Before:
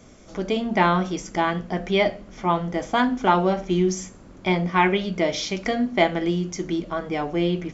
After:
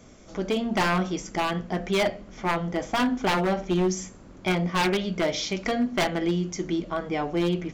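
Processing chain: wavefolder -15.5 dBFS; gain -1.5 dB

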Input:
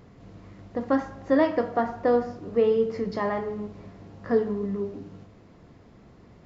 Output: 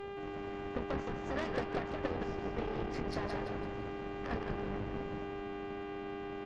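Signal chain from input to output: octaver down 2 oct, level -4 dB; harmonic-percussive split harmonic -17 dB; compressor 2:1, threshold -41 dBFS, peak gain reduction 10 dB; buzz 400 Hz, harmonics 7, -44 dBFS -8 dB/oct; added harmonics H 8 -17 dB, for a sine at -22 dBFS; on a send: frequency-shifting echo 0.168 s, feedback 44%, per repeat -93 Hz, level -4.5 dB

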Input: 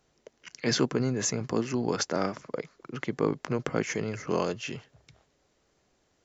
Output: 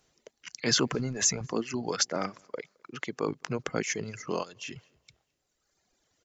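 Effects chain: 0.76–1.47 transient shaper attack 0 dB, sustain +8 dB; high shelf 2200 Hz +7.5 dB; feedback echo 0.215 s, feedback 37%, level -22 dB; 4.31–4.76 level quantiser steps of 9 dB; reverb removal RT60 1.7 s; 2.44–3.28 low shelf 210 Hz -9 dB; gain -2 dB

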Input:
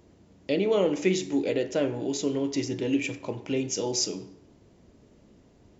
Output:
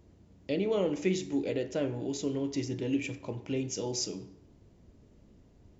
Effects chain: low shelf 130 Hz +11.5 dB; gain -6.5 dB

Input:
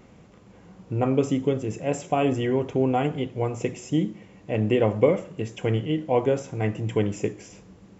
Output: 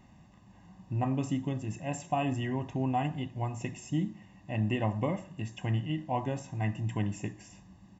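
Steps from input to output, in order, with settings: comb 1.1 ms, depth 86%; gain -8.5 dB

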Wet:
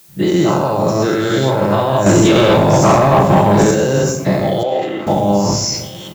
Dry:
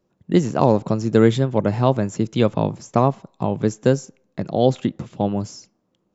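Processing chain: spectral dilation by 0.24 s; recorder AGC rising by 41 dB/s; limiter -5 dBFS, peak gain reduction 8 dB; low shelf 340 Hz -6 dB; notch comb 240 Hz; echo 1.174 s -22.5 dB; shoebox room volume 300 m³, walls mixed, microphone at 0.7 m; 2.06–3.71 sample leveller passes 2; added noise blue -48 dBFS; 4.63–5.07 three-band isolator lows -19 dB, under 350 Hz, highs -17 dB, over 3100 Hz; sustainer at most 64 dB/s; gain +2 dB

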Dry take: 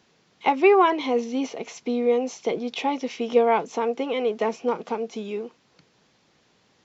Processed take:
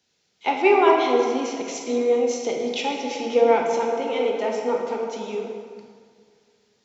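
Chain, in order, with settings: tone controls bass -5 dB, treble +5 dB; notch 1100 Hz, Q 7.3; in parallel at 0 dB: compressor, threshold -33 dBFS, peak gain reduction 19 dB; on the sum: reverb RT60 2.7 s, pre-delay 13 ms, DRR -0.5 dB; three-band expander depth 40%; gain -3.5 dB

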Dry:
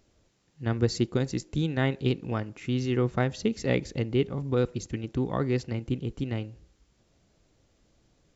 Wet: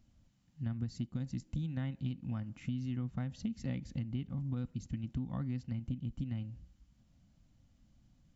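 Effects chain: EQ curve 250 Hz 0 dB, 440 Hz -28 dB, 710 Hz -11 dB; compressor 6:1, threshold -36 dBFS, peak gain reduction 14 dB; small resonant body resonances 520/3000 Hz, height 9 dB; gain +1.5 dB

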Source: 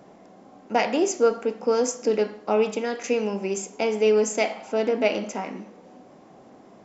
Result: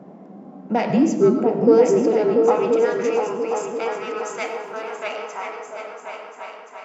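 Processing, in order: high shelf 2200 Hz -9.5 dB; in parallel at -2 dB: compressor, threshold -31 dBFS, peak gain reduction 15.5 dB; on the sum: soft clip -9.5 dBFS, distortion -24 dB; 0.89–1.39 frequency shift -71 Hz; 4.46–4.99 backlash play -44.5 dBFS; high-pass sweep 180 Hz -> 1200 Hz, 0.9–2.79; on a send: repeats that get brighter 0.344 s, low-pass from 200 Hz, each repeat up 2 oct, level 0 dB; on the sum: digital reverb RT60 0.81 s, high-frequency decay 0.8×, pre-delay 60 ms, DRR 9 dB; mismatched tape noise reduction decoder only

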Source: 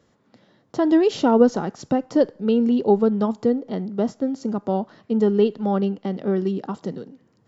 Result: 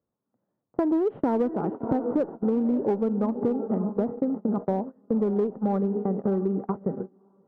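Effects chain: inverse Chebyshev low-pass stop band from 5500 Hz, stop band 70 dB; on a send: diffused feedback echo 0.611 s, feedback 41%, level -12.5 dB; on the sum: gate -28 dBFS, range -25 dB; in parallel at -6 dB: hard clip -16 dBFS, distortion -10 dB; on the sum: compressor, threshold -22 dBFS, peak gain reduction 13.5 dB

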